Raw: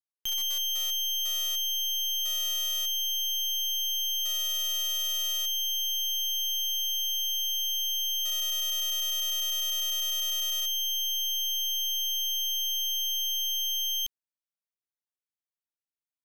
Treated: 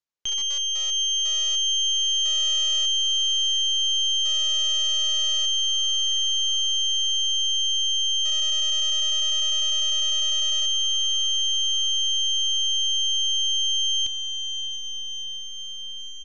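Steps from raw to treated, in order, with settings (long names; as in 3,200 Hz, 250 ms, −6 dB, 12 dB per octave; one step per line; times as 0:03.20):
downsampling to 16,000 Hz
feedback delay with all-pass diffusion 695 ms, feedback 72%, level −10 dB
level +4.5 dB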